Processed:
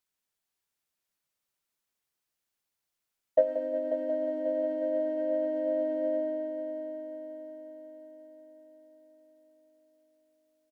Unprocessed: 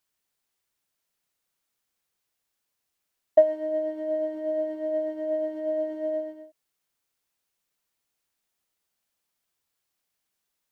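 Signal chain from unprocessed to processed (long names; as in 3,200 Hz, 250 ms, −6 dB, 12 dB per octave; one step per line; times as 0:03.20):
pitch-shifted copies added −3 semitones −2 dB
echo machine with several playback heads 180 ms, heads first and third, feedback 66%, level −11 dB
level −7.5 dB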